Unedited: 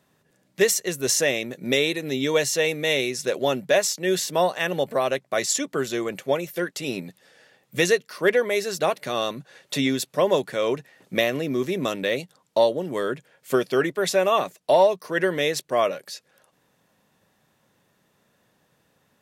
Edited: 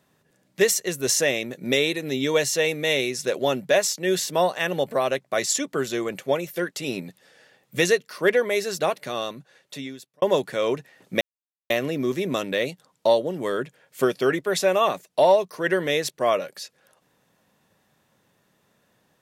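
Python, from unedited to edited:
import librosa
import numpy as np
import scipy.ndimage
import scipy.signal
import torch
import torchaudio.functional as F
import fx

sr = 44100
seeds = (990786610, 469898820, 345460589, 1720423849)

y = fx.edit(x, sr, fx.fade_out_span(start_s=8.73, length_s=1.49),
    fx.insert_silence(at_s=11.21, length_s=0.49), tone=tone)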